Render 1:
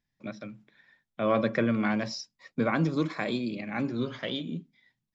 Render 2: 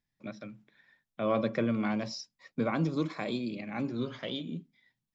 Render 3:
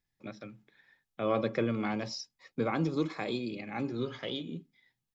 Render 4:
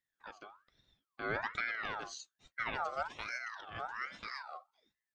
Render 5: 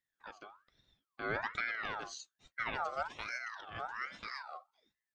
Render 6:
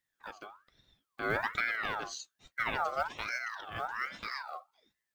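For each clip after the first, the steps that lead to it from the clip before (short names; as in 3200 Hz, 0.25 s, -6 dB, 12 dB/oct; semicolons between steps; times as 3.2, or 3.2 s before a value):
dynamic EQ 1700 Hz, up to -6 dB, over -47 dBFS, Q 2.5; gain -3 dB
comb 2.4 ms, depth 35%
ring modulator with a swept carrier 1400 Hz, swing 35%, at 1.2 Hz; gain -4.5 dB
nothing audible
block floating point 7-bit; gain +4.5 dB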